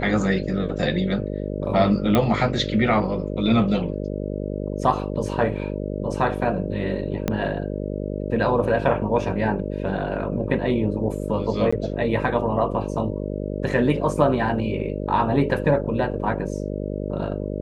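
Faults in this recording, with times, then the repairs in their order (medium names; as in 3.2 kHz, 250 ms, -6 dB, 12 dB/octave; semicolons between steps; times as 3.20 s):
buzz 50 Hz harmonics 12 -28 dBFS
2.15 s: pop -7 dBFS
7.28 s: pop -9 dBFS
11.71–11.72 s: dropout 15 ms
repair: de-click; de-hum 50 Hz, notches 12; interpolate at 11.71 s, 15 ms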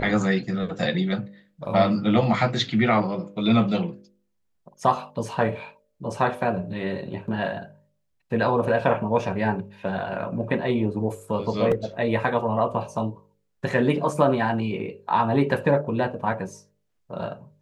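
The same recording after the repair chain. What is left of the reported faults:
7.28 s: pop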